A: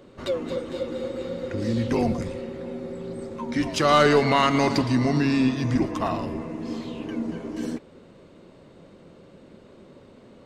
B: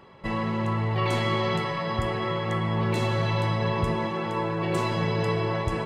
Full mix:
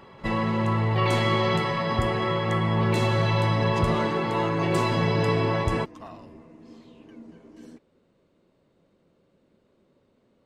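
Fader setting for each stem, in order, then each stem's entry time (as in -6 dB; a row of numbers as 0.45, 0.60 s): -16.0, +2.5 dB; 0.00, 0.00 s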